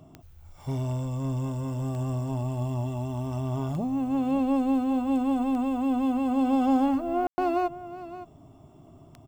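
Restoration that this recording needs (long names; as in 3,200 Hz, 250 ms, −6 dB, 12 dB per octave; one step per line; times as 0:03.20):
click removal
ambience match 0:07.27–0:07.38
echo removal 565 ms −14.5 dB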